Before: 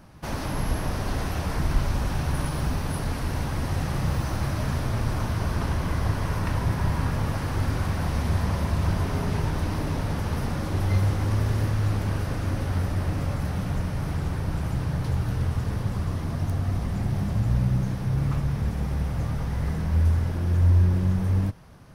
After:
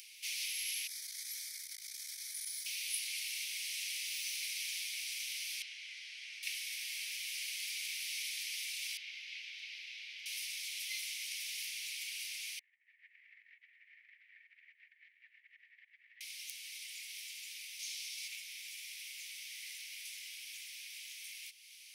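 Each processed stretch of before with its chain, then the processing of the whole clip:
0:00.87–0:02.66: parametric band 1,200 Hz +4 dB 1.1 octaves + phaser with its sweep stopped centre 550 Hz, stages 8 + saturating transformer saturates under 130 Hz
0:05.62–0:06.43: low-pass filter 6,200 Hz + spectral tilt −3.5 dB per octave
0:08.97–0:10.26: high-frequency loss of the air 230 metres + notch filter 1,200 Hz, Q 7.3
0:12.59–0:16.21: drawn EQ curve 110 Hz 0 dB, 210 Hz +13 dB, 350 Hz −10 dB, 10,000 Hz −24 dB + compressor whose output falls as the input rises −26 dBFS, ratio −0.5 + transistor ladder low-pass 1,900 Hz, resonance 85%
0:17.79–0:18.28: high-pass filter 1,500 Hz + parametric band 5,400 Hz +6.5 dB 1.7 octaves
whole clip: Chebyshev high-pass filter 2,200 Hz, order 6; upward compression, threshold −51 dBFS; level +4 dB

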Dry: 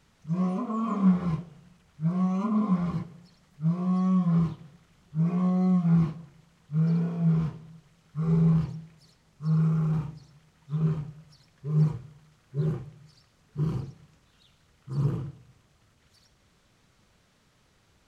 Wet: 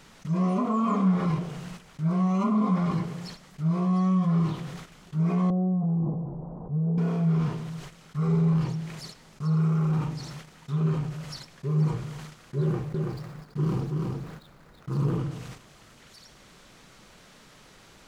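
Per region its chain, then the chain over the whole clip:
0:05.50–0:06.98: mu-law and A-law mismatch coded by mu + Butterworth low-pass 860 Hz + downward compressor, threshold −26 dBFS
0:12.61–0:15.19: running median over 15 samples + single-tap delay 331 ms −6 dB
whole clip: noise gate −56 dBFS, range −21 dB; parametric band 81 Hz −12.5 dB 1.2 octaves; envelope flattener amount 50%

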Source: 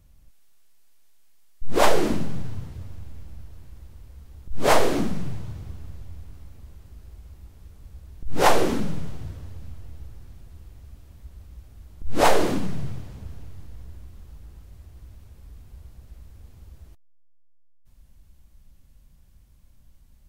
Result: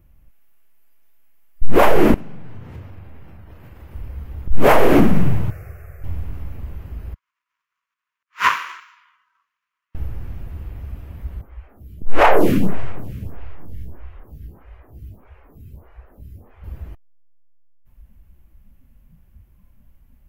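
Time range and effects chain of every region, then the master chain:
0:02.14–0:03.95: low-shelf EQ 170 Hz −8.5 dB + downward compressor 4 to 1, threshold −46 dBFS + flutter between parallel walls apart 7 metres, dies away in 0.26 s
0:05.50–0:06.04: low-shelf EQ 370 Hz −11 dB + phaser with its sweep stopped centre 940 Hz, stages 6
0:07.14–0:09.95: upward compression, threshold −31 dBFS + linear-phase brick-wall band-pass 930–7,500 Hz + power curve on the samples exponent 1.4
0:11.41–0:16.64: low-shelf EQ 490 Hz −2.5 dB + phaser with staggered stages 1.6 Hz
whole clip: noise reduction from a noise print of the clip's start 11 dB; flat-topped bell 5,800 Hz −12.5 dB; boost into a limiter +14.5 dB; level −1 dB

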